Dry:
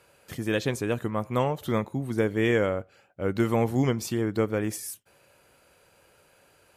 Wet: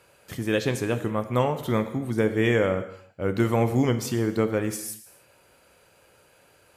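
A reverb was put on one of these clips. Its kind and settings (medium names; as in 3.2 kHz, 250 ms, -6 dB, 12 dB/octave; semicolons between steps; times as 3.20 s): gated-style reverb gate 330 ms falling, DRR 9 dB; trim +1.5 dB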